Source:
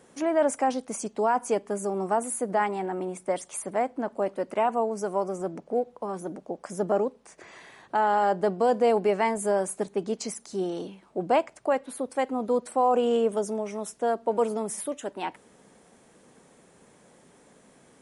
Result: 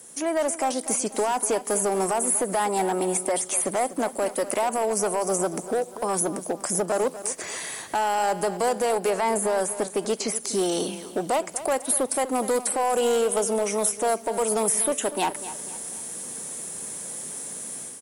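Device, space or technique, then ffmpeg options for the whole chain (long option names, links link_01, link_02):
FM broadcast chain: -filter_complex "[0:a]acrossover=split=4100[link_01][link_02];[link_02]acompressor=threshold=-44dB:ratio=4:attack=1:release=60[link_03];[link_01][link_03]amix=inputs=2:normalize=0,highpass=56,dynaudnorm=framelen=540:gausssize=3:maxgain=11dB,acrossover=split=440|1600|3700[link_04][link_05][link_06][link_07];[link_04]acompressor=threshold=-28dB:ratio=4[link_08];[link_05]acompressor=threshold=-15dB:ratio=4[link_09];[link_06]acompressor=threshold=-39dB:ratio=4[link_10];[link_07]acompressor=threshold=-45dB:ratio=4[link_11];[link_08][link_09][link_10][link_11]amix=inputs=4:normalize=0,aemphasis=mode=production:type=50fm,alimiter=limit=-14.5dB:level=0:latency=1:release=150,asoftclip=type=hard:threshold=-18.5dB,lowpass=frequency=15000:width=0.5412,lowpass=frequency=15000:width=1.3066,aemphasis=mode=production:type=50fm,asettb=1/sr,asplit=3[link_12][link_13][link_14];[link_12]atrim=end=9.104[link_15];[link_13]atrim=start=9.1:end=10.36,asetpts=PTS-STARTPTS,afade=type=in:duration=0.004:curve=qsin,afade=type=out:start_time=1.256:duration=0.004:curve=qsin,highshelf=frequency=5700:gain=-6[link_16];[link_14]atrim=start=10.356[link_17];[link_15][link_16]acrossfade=duration=0.004:curve1=hsin:curve2=qsin[link_18];[link_18][link_17]acrossfade=duration=0.004:curve1=qsin:curve2=hsin,aecho=1:1:244|488|732|976:0.2|0.0798|0.0319|0.0128"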